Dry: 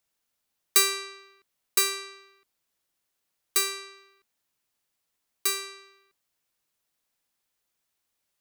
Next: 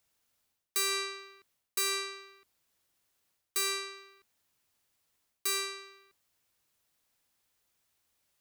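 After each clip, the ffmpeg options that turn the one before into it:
-af "areverse,acompressor=threshold=0.0251:ratio=6,areverse,equalizer=f=85:t=o:w=0.85:g=6.5,volume=1.41"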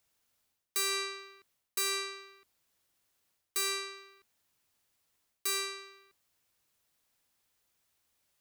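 -af "asoftclip=type=tanh:threshold=0.0794"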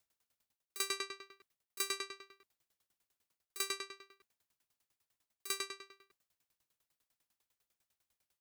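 -af "aeval=exprs='val(0)*pow(10,-23*if(lt(mod(10*n/s,1),2*abs(10)/1000),1-mod(10*n/s,1)/(2*abs(10)/1000),(mod(10*n/s,1)-2*abs(10)/1000)/(1-2*abs(10)/1000))/20)':c=same,volume=1.12"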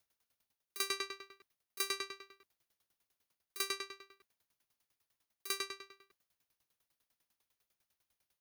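-filter_complex "[0:a]bandreject=f=7700:w=5.2,acrossover=split=1200[s0][s1];[s0]acrusher=bits=3:mode=log:mix=0:aa=0.000001[s2];[s2][s1]amix=inputs=2:normalize=0,volume=1.12"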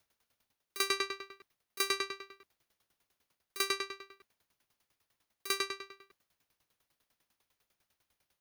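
-af "highshelf=f=4800:g=-6,volume=2.24"

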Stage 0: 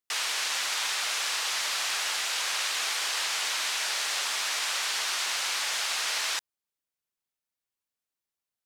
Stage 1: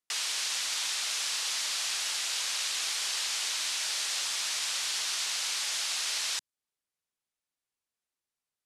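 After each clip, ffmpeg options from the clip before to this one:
-filter_complex "[0:a]lowpass=f=12000:w=0.5412,lowpass=f=12000:w=1.3066,acrossover=split=240|3000[s0][s1][s2];[s1]acompressor=threshold=0.00562:ratio=2.5[s3];[s0][s3][s2]amix=inputs=3:normalize=0"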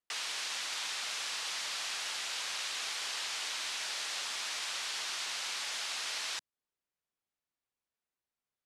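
-af "highshelf=f=3800:g=-10.5"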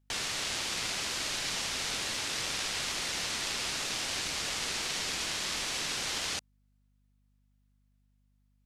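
-af "aeval=exprs='val(0)*sin(2*PI*1100*n/s)':c=same,aeval=exprs='val(0)+0.000178*(sin(2*PI*50*n/s)+sin(2*PI*2*50*n/s)/2+sin(2*PI*3*50*n/s)/3+sin(2*PI*4*50*n/s)/4+sin(2*PI*5*50*n/s)/5)':c=same,volume=2.11"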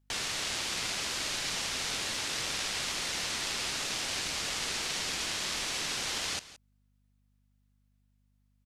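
-af "aecho=1:1:171:0.141"

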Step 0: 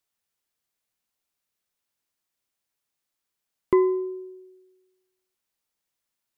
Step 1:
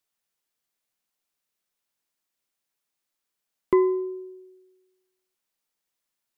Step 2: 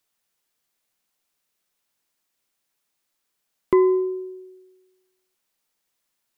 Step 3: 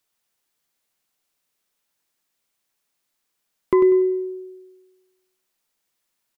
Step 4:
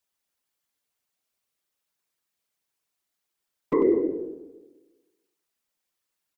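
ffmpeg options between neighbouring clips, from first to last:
-af "equalizer=f=76:t=o:w=0.71:g=-13.5"
-af "alimiter=limit=0.2:level=0:latency=1:release=214,volume=2"
-af "aecho=1:1:97|194|291|388:0.398|0.127|0.0408|0.013"
-af "afftfilt=real='hypot(re,im)*cos(2*PI*random(0))':imag='hypot(re,im)*sin(2*PI*random(1))':win_size=512:overlap=0.75"

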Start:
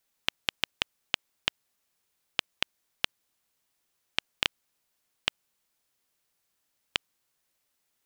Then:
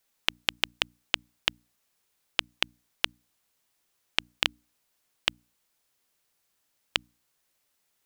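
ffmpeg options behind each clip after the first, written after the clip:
-af "bandreject=f=60:t=h:w=6,bandreject=f=120:t=h:w=6,bandreject=f=180:t=h:w=6,bandreject=f=240:t=h:w=6,bandreject=f=300:t=h:w=6,volume=1.33"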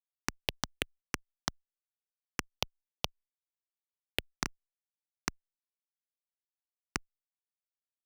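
-filter_complex "[0:a]acompressor=threshold=0.0501:ratio=6,acrusher=bits=3:dc=4:mix=0:aa=0.000001,asplit=2[s0][s1];[s1]afreqshift=2.4[s2];[s0][s2]amix=inputs=2:normalize=1,volume=1.26"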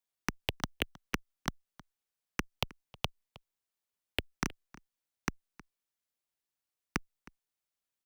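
-filter_complex "[0:a]acrossover=split=340|3000[s0][s1][s2];[s1]acompressor=threshold=0.00891:ratio=2[s3];[s0][s3][s2]amix=inputs=3:normalize=0,acrossover=split=650|2900[s4][s5][s6];[s6]asoftclip=type=hard:threshold=0.0266[s7];[s4][s5][s7]amix=inputs=3:normalize=0,asplit=2[s8][s9];[s9]adelay=314.9,volume=0.1,highshelf=f=4000:g=-7.08[s10];[s8][s10]amix=inputs=2:normalize=0,volume=1.78"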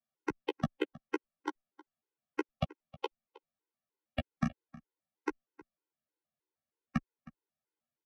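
-filter_complex "[0:a]bandpass=f=300:t=q:w=0.52:csg=0,asplit=2[s0][s1];[s1]adelay=13,volume=0.501[s2];[s0][s2]amix=inputs=2:normalize=0,afftfilt=real='re*gt(sin(2*PI*3.2*pts/sr)*(1-2*mod(floor(b*sr/1024/270),2)),0)':imag='im*gt(sin(2*PI*3.2*pts/sr)*(1-2*mod(floor(b*sr/1024/270),2)),0)':win_size=1024:overlap=0.75,volume=2.51"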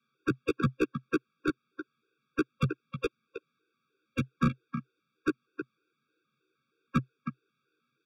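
-filter_complex "[0:a]highpass=f=100:w=0.5412,highpass=f=100:w=1.3066,equalizer=f=130:t=q:w=4:g=9,equalizer=f=530:t=q:w=4:g=-7,equalizer=f=1100:t=q:w=4:g=-4,equalizer=f=2000:t=q:w=4:g=-3,lowpass=f=4600:w=0.5412,lowpass=f=4600:w=1.3066,asplit=2[s0][s1];[s1]highpass=f=720:p=1,volume=39.8,asoftclip=type=tanh:threshold=0.15[s2];[s0][s2]amix=inputs=2:normalize=0,lowpass=f=1800:p=1,volume=0.501,afftfilt=real='re*eq(mod(floor(b*sr/1024/550),2),0)':imag='im*eq(mod(floor(b*sr/1024/550),2),0)':win_size=1024:overlap=0.75,volume=1.19"

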